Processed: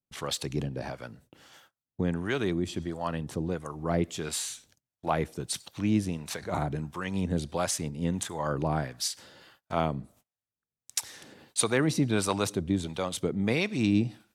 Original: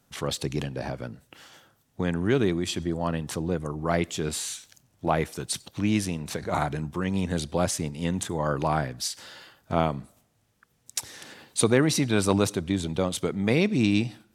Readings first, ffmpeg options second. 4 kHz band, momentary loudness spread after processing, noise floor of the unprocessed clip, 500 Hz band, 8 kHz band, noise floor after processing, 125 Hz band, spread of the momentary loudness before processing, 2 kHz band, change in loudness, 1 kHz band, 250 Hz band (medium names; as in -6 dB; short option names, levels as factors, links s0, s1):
-3.0 dB, 9 LU, -68 dBFS, -4.5 dB, -2.0 dB, under -85 dBFS, -3.0 dB, 11 LU, -3.0 dB, -3.5 dB, -3.5 dB, -3.0 dB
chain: -filter_complex "[0:a]acrossover=split=620[s0][s1];[s0]aeval=exprs='val(0)*(1-0.7/2+0.7/2*cos(2*PI*1.5*n/s))':c=same[s2];[s1]aeval=exprs='val(0)*(1-0.7/2-0.7/2*cos(2*PI*1.5*n/s))':c=same[s3];[s2][s3]amix=inputs=2:normalize=0,agate=range=0.0501:threshold=0.00126:ratio=16:detection=peak"